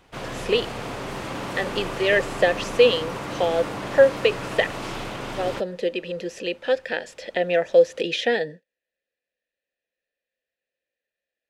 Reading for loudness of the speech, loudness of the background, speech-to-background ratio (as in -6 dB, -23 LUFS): -23.0 LUFS, -32.0 LUFS, 9.0 dB